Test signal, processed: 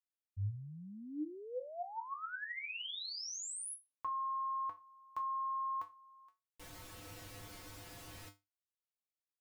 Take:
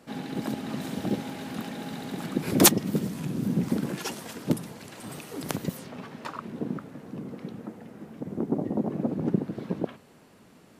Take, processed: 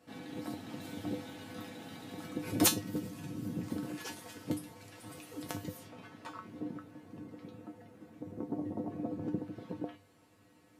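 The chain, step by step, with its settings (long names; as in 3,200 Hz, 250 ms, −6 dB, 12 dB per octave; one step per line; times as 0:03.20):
tuned comb filter 100 Hz, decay 0.22 s, harmonics odd, mix 90%
level +1.5 dB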